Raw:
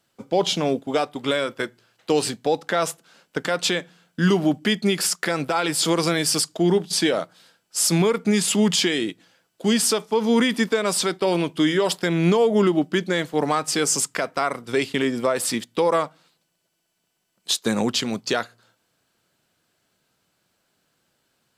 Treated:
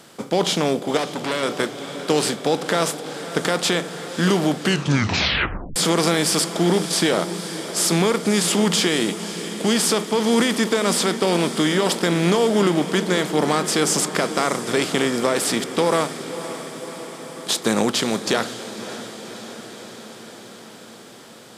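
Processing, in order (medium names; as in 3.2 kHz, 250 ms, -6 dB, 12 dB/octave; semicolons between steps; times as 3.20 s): spectral levelling over time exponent 0.6; echo that smears into a reverb 562 ms, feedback 70%, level -12.5 dB; 0.97–1.43 s: transformer saturation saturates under 1.8 kHz; 4.58 s: tape stop 1.18 s; trim -2.5 dB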